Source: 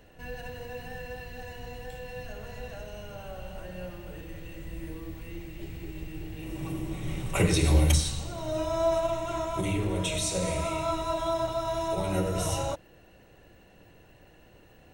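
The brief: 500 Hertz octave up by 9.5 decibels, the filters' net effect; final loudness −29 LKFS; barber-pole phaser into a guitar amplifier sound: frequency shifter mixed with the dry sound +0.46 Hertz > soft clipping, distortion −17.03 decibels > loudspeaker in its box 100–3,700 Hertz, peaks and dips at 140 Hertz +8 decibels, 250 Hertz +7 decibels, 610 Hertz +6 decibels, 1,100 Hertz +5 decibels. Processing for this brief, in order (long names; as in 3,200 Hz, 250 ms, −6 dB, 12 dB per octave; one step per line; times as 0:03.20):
parametric band 500 Hz +7.5 dB
frequency shifter mixed with the dry sound +0.46 Hz
soft clipping −20.5 dBFS
loudspeaker in its box 100–3,700 Hz, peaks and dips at 140 Hz +8 dB, 250 Hz +7 dB, 610 Hz +6 dB, 1,100 Hz +5 dB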